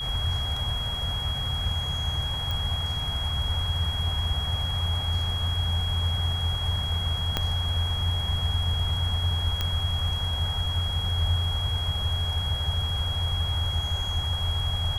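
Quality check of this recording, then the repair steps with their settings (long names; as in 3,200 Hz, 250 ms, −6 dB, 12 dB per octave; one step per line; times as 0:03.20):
whistle 3,300 Hz −30 dBFS
0:02.51: click
0:07.37: click −10 dBFS
0:09.61: click −12 dBFS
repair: click removal
notch filter 3,300 Hz, Q 30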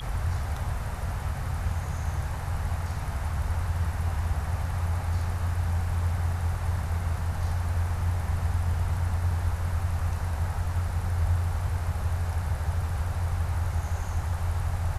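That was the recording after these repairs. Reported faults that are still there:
0:07.37: click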